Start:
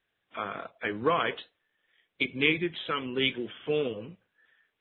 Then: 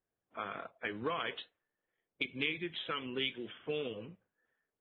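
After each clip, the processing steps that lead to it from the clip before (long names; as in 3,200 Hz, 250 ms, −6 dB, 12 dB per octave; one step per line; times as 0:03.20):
low-pass that shuts in the quiet parts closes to 750 Hz, open at −24 dBFS
high-shelf EQ 3,400 Hz +12 dB
downward compressor 2.5 to 1, threshold −29 dBFS, peak gain reduction 9.5 dB
level −5.5 dB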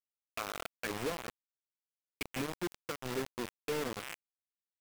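loose part that buzzes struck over −55 dBFS, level −29 dBFS
treble cut that deepens with the level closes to 590 Hz, closed at −32.5 dBFS
log-companded quantiser 2 bits
level −5.5 dB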